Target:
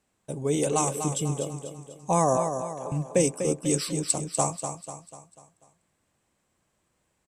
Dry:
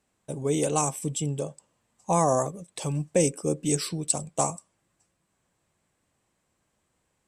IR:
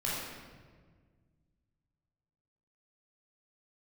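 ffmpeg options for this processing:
-filter_complex "[0:a]asettb=1/sr,asplit=3[s0][s1][s2];[s0]atrim=end=2.374[s3];[s1]atrim=start=2.37:end=2.92,asetpts=PTS-STARTPTS,afade=t=in:d=0.004:c=qsin,afade=t=out:st=0.546:d=0.004:c=qsin,asuperpass=centerf=750:order=4:qfactor=0.9[s4];[s2]atrim=start=2.916[s5];[s3][s4]acrossfade=d=0.004:c1=hsin:c2=qsin[s6];[s6][s5]acrossfade=d=0.004:c1=qsin:c2=hsin,aecho=1:1:246|492|738|984|1230:0.398|0.183|0.0842|0.0388|0.0178"

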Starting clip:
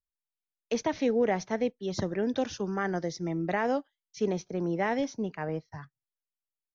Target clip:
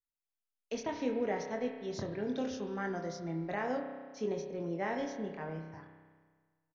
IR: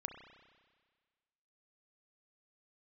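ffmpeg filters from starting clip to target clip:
-filter_complex "[0:a]asplit=2[s0][s1];[s1]adelay=24,volume=0.501[s2];[s0][s2]amix=inputs=2:normalize=0[s3];[1:a]atrim=start_sample=2205[s4];[s3][s4]afir=irnorm=-1:irlink=0,volume=0.562"

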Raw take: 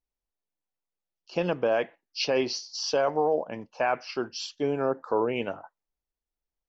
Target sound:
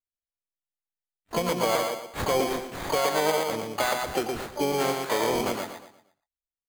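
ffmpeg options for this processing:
-filter_complex "[0:a]agate=range=0.0794:threshold=0.00562:ratio=16:detection=peak,lowpass=f=2500:p=1,acompressor=threshold=0.0398:ratio=4,asplit=2[s0][s1];[s1]adelay=118,lowpass=f=1400:p=1,volume=0.708,asplit=2[s2][s3];[s3]adelay=118,lowpass=f=1400:p=1,volume=0.39,asplit=2[s4][s5];[s5]adelay=118,lowpass=f=1400:p=1,volume=0.39,asplit=2[s6][s7];[s7]adelay=118,lowpass=f=1400:p=1,volume=0.39,asplit=2[s8][s9];[s9]adelay=118,lowpass=f=1400:p=1,volume=0.39[s10];[s0][s2][s4][s6][s8][s10]amix=inputs=6:normalize=0,acrusher=samples=16:mix=1:aa=0.000001,asplit=3[s11][s12][s13];[s12]asetrate=58866,aresample=44100,atempo=0.749154,volume=0.501[s14];[s13]asetrate=88200,aresample=44100,atempo=0.5,volume=0.562[s15];[s11][s14][s15]amix=inputs=3:normalize=0,volume=1.5"

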